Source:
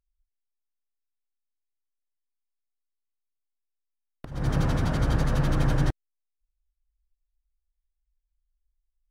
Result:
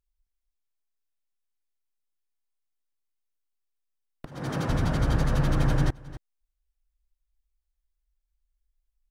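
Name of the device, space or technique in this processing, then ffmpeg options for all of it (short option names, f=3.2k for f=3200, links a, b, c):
ducked delay: -filter_complex "[0:a]asplit=3[a][b][c];[b]adelay=266,volume=-7.5dB[d];[c]apad=whole_len=413479[e];[d][e]sidechaincompress=threshold=-41dB:ratio=5:attack=11:release=301[f];[a][f]amix=inputs=2:normalize=0,asettb=1/sr,asplit=3[g][h][i];[g]atrim=end=4.264[j];[h]atrim=start=4.26:end=4.69,asetpts=PTS-STARTPTS,afade=t=in:d=0.004:c=qsin,afade=t=out:st=0.426:d=0.004:c=qsin,highpass=180[k];[i]atrim=start=4.686[l];[j][k]acrossfade=d=0.004:c1=hsin:c2=qsin[m];[m][l]acrossfade=d=0.004:c1=qsin:c2=hsin"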